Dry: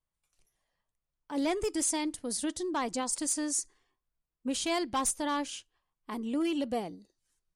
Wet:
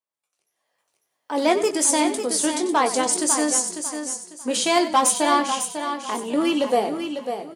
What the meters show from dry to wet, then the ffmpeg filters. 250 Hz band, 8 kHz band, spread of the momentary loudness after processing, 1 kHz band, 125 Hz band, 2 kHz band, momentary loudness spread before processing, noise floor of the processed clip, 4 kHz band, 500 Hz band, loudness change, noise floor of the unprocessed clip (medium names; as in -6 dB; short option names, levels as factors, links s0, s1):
+8.5 dB, +11.5 dB, 10 LU, +14.5 dB, no reading, +12.5 dB, 10 LU, -79 dBFS, +11.5 dB, +13.0 dB, +10.5 dB, under -85 dBFS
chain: -filter_complex "[0:a]highpass=530,asplit=2[s0][s1];[s1]adelay=20,volume=0.398[s2];[s0][s2]amix=inputs=2:normalize=0,asplit=2[s3][s4];[s4]aecho=0:1:548|1096|1644:0.398|0.107|0.029[s5];[s3][s5]amix=inputs=2:normalize=0,dynaudnorm=f=470:g=3:m=5.62,tiltshelf=f=720:g=4.5,asplit=2[s6][s7];[s7]asplit=3[s8][s9][s10];[s8]adelay=93,afreqshift=-39,volume=0.224[s11];[s9]adelay=186,afreqshift=-78,volume=0.0785[s12];[s10]adelay=279,afreqshift=-117,volume=0.0275[s13];[s11][s12][s13]amix=inputs=3:normalize=0[s14];[s6][s14]amix=inputs=2:normalize=0"